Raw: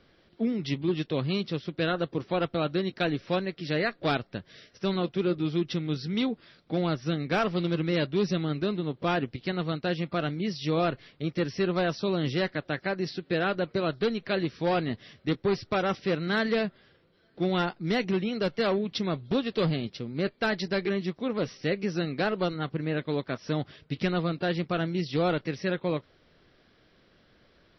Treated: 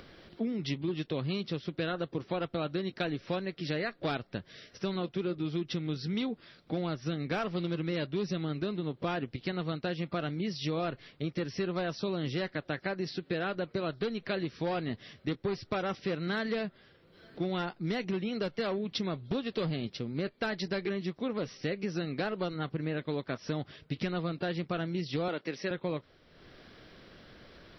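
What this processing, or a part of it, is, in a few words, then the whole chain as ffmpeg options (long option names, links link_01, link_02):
upward and downward compression: -filter_complex "[0:a]asettb=1/sr,asplit=3[link_01][link_02][link_03];[link_01]atrim=end=25.284[link_04];[link_02]atrim=start=25.28:end=25.71,asetpts=PTS-STARTPTS,afade=type=in:duration=0.004:curve=qsin,afade=type=out:start_time=0.426:duration=0.004:curve=qsin,highpass=250[link_05];[link_03]atrim=start=25.706[link_06];[link_04][link_05]acrossfade=duration=0.004:curve1=hsin:curve2=qsin[link_07];[link_07][link_06]acrossfade=duration=0.004:curve1=qsin:curve2=hsin,acompressor=mode=upward:threshold=-44dB:ratio=2.5,acompressor=threshold=-30dB:ratio=4"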